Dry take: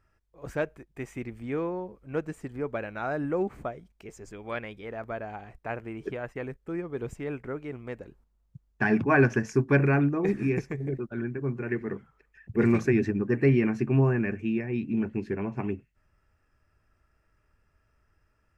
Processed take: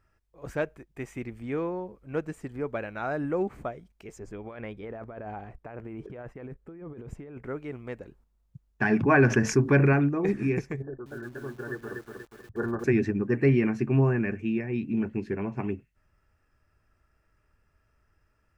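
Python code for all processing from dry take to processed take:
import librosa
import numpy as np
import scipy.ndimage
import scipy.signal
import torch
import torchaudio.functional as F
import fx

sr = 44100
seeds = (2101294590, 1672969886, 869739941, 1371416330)

y = fx.chain(x, sr, fx.high_shelf(hz=2100.0, db=-12.0),
    fx.over_compress(threshold_db=-40.0, ratio=-1.0), at=(4.19, 7.43))
y = fx.chain(y, sr, fx.high_shelf(hz=5000.0, db=-4.0),
    fx.env_flatten(amount_pct=50), at=(9.03, 9.93))
y = fx.chain(y, sr, fx.brickwall_lowpass(high_hz=1800.0),
    fx.peak_eq(hz=170.0, db=-13.0, octaves=2.1),
    fx.echo_crushed(ms=240, feedback_pct=55, bits=9, wet_db=-3.5), at=(10.82, 12.84))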